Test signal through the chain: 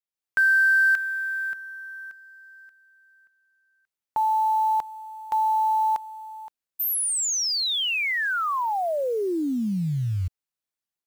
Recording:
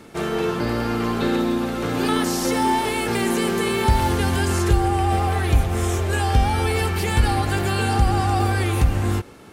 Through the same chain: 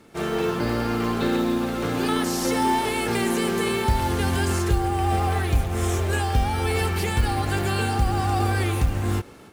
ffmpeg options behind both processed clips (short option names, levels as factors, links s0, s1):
-af "acrusher=bits=7:mode=log:mix=0:aa=0.000001,dynaudnorm=f=110:g=3:m=2.24,volume=0.398"